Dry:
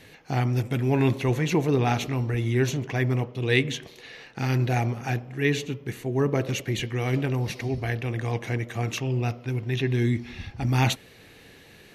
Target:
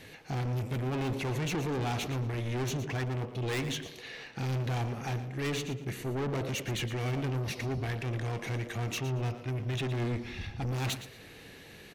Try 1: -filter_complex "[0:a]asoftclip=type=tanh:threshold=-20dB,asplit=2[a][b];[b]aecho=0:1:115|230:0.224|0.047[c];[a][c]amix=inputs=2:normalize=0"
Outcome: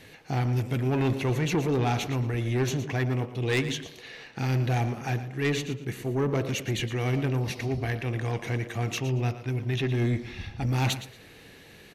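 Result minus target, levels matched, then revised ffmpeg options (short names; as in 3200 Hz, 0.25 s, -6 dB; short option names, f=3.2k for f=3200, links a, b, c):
soft clip: distortion -8 dB
-filter_complex "[0:a]asoftclip=type=tanh:threshold=-30dB,asplit=2[a][b];[b]aecho=0:1:115|230:0.224|0.047[c];[a][c]amix=inputs=2:normalize=0"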